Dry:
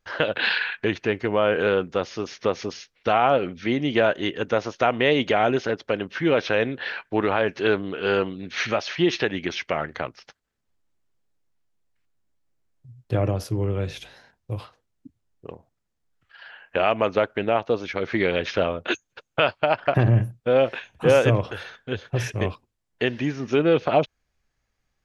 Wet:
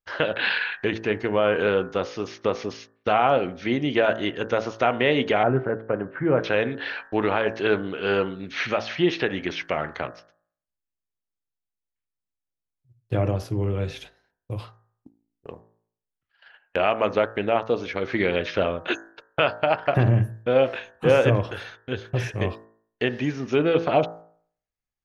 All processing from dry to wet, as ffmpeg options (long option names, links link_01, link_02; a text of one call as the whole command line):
ffmpeg -i in.wav -filter_complex "[0:a]asettb=1/sr,asplit=3[link_01][link_02][link_03];[link_01]atrim=end=5.434[link_04];[link_02]atrim=start=5.43:end=6.44,asetpts=PTS-STARTPTS,afade=type=in:duration=0.004:curve=qsin,afade=type=out:start_time=1.006:duration=0.004:curve=qsin,lowpass=frequency=1600:width=0.5412,lowpass=frequency=1600:width=1.3066,equalizer=frequency=130:width=5.1:gain=9[link_05];[link_03]atrim=start=6.436[link_06];[link_04][link_05]acrossfade=duration=0.004:curve1=hsin:curve2=qsin[link_07];[link_07][link_06]acrossfade=duration=0.004:curve1=qsin:curve2=hsin,agate=range=-17dB:threshold=-42dB:ratio=16:detection=peak,acrossover=split=3900[link_08][link_09];[link_09]acompressor=threshold=-44dB:ratio=4:attack=1:release=60[link_10];[link_08][link_10]amix=inputs=2:normalize=0,bandreject=frequency=55.57:width_type=h:width=4,bandreject=frequency=111.14:width_type=h:width=4,bandreject=frequency=166.71:width_type=h:width=4,bandreject=frequency=222.28:width_type=h:width=4,bandreject=frequency=277.85:width_type=h:width=4,bandreject=frequency=333.42:width_type=h:width=4,bandreject=frequency=388.99:width_type=h:width=4,bandreject=frequency=444.56:width_type=h:width=4,bandreject=frequency=500.13:width_type=h:width=4,bandreject=frequency=555.7:width_type=h:width=4,bandreject=frequency=611.27:width_type=h:width=4,bandreject=frequency=666.84:width_type=h:width=4,bandreject=frequency=722.41:width_type=h:width=4,bandreject=frequency=777.98:width_type=h:width=4,bandreject=frequency=833.55:width_type=h:width=4,bandreject=frequency=889.12:width_type=h:width=4,bandreject=frequency=944.69:width_type=h:width=4,bandreject=frequency=1000.26:width_type=h:width=4,bandreject=frequency=1055.83:width_type=h:width=4,bandreject=frequency=1111.4:width_type=h:width=4,bandreject=frequency=1166.97:width_type=h:width=4,bandreject=frequency=1222.54:width_type=h:width=4,bandreject=frequency=1278.11:width_type=h:width=4,bandreject=frequency=1333.68:width_type=h:width=4,bandreject=frequency=1389.25:width_type=h:width=4,bandreject=frequency=1444.82:width_type=h:width=4,bandreject=frequency=1500.39:width_type=h:width=4,bandreject=frequency=1555.96:width_type=h:width=4,bandreject=frequency=1611.53:width_type=h:width=4,bandreject=frequency=1667.1:width_type=h:width=4,bandreject=frequency=1722.67:width_type=h:width=4,bandreject=frequency=1778.24:width_type=h:width=4,bandreject=frequency=1833.81:width_type=h:width=4,bandreject=frequency=1889.38:width_type=h:width=4" out.wav